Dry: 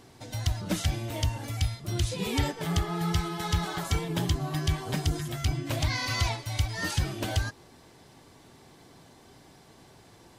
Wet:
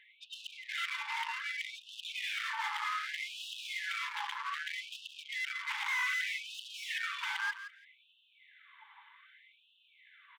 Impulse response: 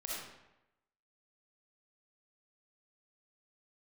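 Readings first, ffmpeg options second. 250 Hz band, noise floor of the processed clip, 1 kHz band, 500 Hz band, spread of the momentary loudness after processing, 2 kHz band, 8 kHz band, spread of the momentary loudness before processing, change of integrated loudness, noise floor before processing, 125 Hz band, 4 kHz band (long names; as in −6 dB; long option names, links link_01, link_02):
below −40 dB, −68 dBFS, −3.5 dB, below −40 dB, 11 LU, +2.5 dB, −12.0 dB, 3 LU, −6.5 dB, −55 dBFS, below −40 dB, −4.5 dB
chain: -filter_complex "[0:a]afftdn=noise_reduction=19:noise_floor=-44,equalizer=frequency=2100:width=5.7:gain=8,alimiter=limit=-19dB:level=0:latency=1:release=84,aresample=8000,asoftclip=type=tanh:threshold=-34.5dB,aresample=44100,asplit=2[link_01][link_02];[link_02]highpass=frequency=720:poles=1,volume=26dB,asoftclip=type=tanh:threshold=-28.5dB[link_03];[link_01][link_03]amix=inputs=2:normalize=0,lowpass=frequency=2000:poles=1,volume=-6dB,aecho=1:1:169|338:0.266|0.0426,afftfilt=real='re*gte(b*sr/1024,790*pow(2600/790,0.5+0.5*sin(2*PI*0.64*pts/sr)))':imag='im*gte(b*sr/1024,790*pow(2600/790,0.5+0.5*sin(2*PI*0.64*pts/sr)))':win_size=1024:overlap=0.75,volume=3.5dB"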